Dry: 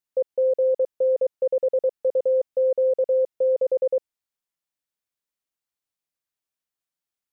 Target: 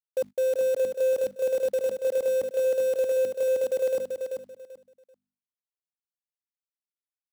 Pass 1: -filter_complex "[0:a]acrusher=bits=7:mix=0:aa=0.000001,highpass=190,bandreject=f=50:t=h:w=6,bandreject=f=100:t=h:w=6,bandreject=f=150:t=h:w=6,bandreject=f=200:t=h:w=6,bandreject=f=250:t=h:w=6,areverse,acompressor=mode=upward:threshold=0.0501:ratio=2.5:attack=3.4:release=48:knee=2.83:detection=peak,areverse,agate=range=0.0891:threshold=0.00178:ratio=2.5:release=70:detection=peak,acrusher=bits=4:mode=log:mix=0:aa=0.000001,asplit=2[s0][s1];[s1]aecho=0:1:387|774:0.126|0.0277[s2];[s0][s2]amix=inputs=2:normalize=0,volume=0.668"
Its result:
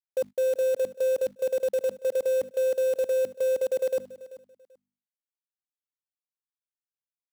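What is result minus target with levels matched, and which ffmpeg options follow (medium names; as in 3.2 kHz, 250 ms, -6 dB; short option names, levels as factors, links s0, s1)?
echo-to-direct -12 dB
-filter_complex "[0:a]acrusher=bits=7:mix=0:aa=0.000001,highpass=190,bandreject=f=50:t=h:w=6,bandreject=f=100:t=h:w=6,bandreject=f=150:t=h:w=6,bandreject=f=200:t=h:w=6,bandreject=f=250:t=h:w=6,areverse,acompressor=mode=upward:threshold=0.0501:ratio=2.5:attack=3.4:release=48:knee=2.83:detection=peak,areverse,agate=range=0.0891:threshold=0.00178:ratio=2.5:release=70:detection=peak,acrusher=bits=4:mode=log:mix=0:aa=0.000001,asplit=2[s0][s1];[s1]aecho=0:1:387|774|1161:0.501|0.11|0.0243[s2];[s0][s2]amix=inputs=2:normalize=0,volume=0.668"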